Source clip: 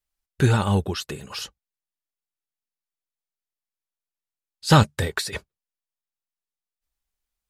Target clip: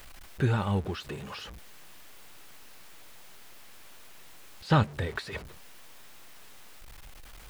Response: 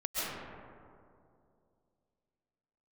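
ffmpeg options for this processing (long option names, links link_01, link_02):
-filter_complex "[0:a]aeval=exprs='val(0)+0.5*0.0316*sgn(val(0))':channel_layout=same,acrossover=split=3600[link_01][link_02];[link_02]acompressor=threshold=-46dB:ratio=4:attack=1:release=60[link_03];[link_01][link_03]amix=inputs=2:normalize=0,volume=-8dB"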